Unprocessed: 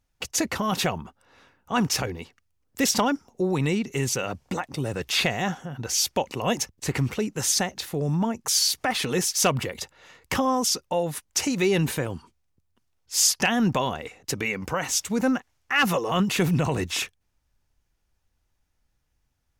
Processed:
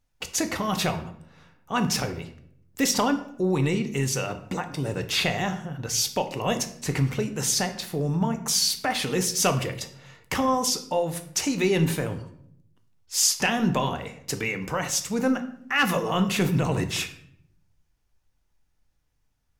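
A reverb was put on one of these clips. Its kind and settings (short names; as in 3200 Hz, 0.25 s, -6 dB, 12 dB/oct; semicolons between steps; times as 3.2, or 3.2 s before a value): shoebox room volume 130 m³, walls mixed, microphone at 0.4 m; gain -1.5 dB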